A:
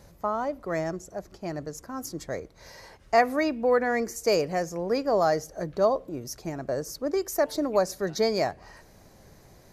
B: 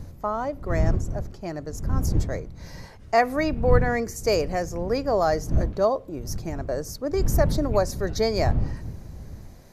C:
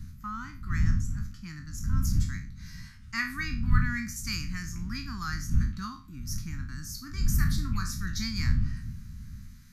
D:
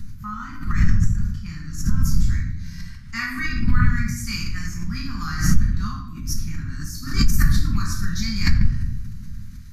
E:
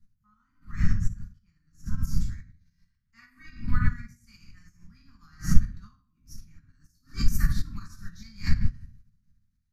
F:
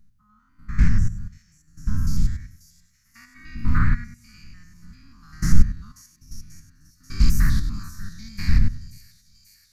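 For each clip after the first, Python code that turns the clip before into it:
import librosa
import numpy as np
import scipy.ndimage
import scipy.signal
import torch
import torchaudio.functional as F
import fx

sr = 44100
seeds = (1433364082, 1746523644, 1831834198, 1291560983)

y1 = fx.dmg_wind(x, sr, seeds[0], corner_hz=100.0, level_db=-28.0)
y1 = F.gain(torch.from_numpy(y1), 1.0).numpy()
y2 = fx.spec_trails(y1, sr, decay_s=0.35)
y2 = scipy.signal.sosfilt(scipy.signal.ellip(3, 1.0, 80, [230.0, 1300.0], 'bandstop', fs=sr, output='sos'), y2)
y2 = F.gain(torch.from_numpy(y2), -3.5).numpy()
y3 = fx.room_shoebox(y2, sr, seeds[1], volume_m3=140.0, walls='mixed', distance_m=1.3)
y3 = fx.pre_swell(y3, sr, db_per_s=100.0)
y4 = fx.upward_expand(y3, sr, threshold_db=-32.0, expansion=2.5)
y4 = F.gain(torch.from_numpy(y4), 1.5).numpy()
y5 = fx.spec_steps(y4, sr, hold_ms=100)
y5 = fx.echo_wet_highpass(y5, sr, ms=537, feedback_pct=73, hz=4400.0, wet_db=-13.5)
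y5 = fx.doppler_dist(y5, sr, depth_ms=0.41)
y5 = F.gain(torch.from_numpy(y5), 8.0).numpy()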